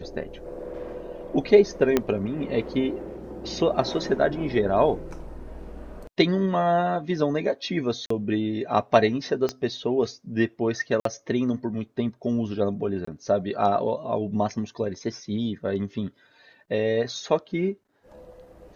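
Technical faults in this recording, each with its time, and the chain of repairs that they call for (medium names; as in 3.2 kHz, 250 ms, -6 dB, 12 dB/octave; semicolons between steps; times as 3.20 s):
1.97 s: pop -7 dBFS
8.06–8.10 s: dropout 44 ms
9.49 s: pop -15 dBFS
11.00–11.05 s: dropout 53 ms
13.05–13.07 s: dropout 24 ms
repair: de-click; interpolate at 8.06 s, 44 ms; interpolate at 11.00 s, 53 ms; interpolate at 13.05 s, 24 ms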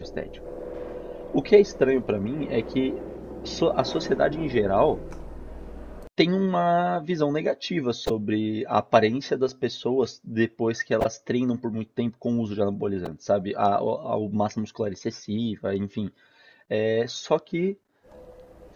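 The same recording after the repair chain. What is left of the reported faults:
1.97 s: pop
9.49 s: pop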